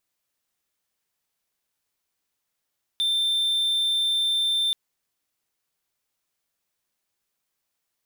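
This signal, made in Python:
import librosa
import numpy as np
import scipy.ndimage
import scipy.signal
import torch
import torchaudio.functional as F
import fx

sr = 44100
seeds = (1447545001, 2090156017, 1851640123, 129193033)

y = 10.0 ** (-18.5 / 20.0) * (1.0 - 4.0 * np.abs(np.mod(3570.0 * (np.arange(round(1.73 * sr)) / sr) + 0.25, 1.0) - 0.5))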